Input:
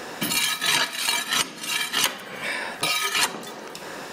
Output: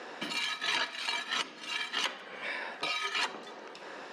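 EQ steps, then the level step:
band-pass filter 270–4,300 Hz
−8.0 dB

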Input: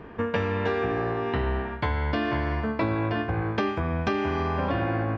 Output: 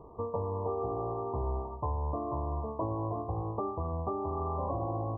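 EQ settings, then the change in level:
linear-phase brick-wall low-pass 1,200 Hz
parametric band 220 Hz −11 dB 0.94 octaves
−4.5 dB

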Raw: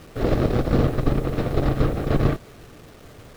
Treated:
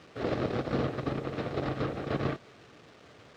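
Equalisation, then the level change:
high-pass filter 86 Hz 12 dB per octave
high-frequency loss of the air 140 metres
spectral tilt +2 dB per octave
−5.5 dB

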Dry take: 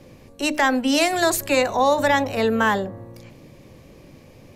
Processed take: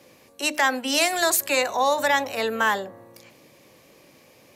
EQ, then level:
high-pass filter 730 Hz 6 dB per octave
high-shelf EQ 9,300 Hz +6.5 dB
0.0 dB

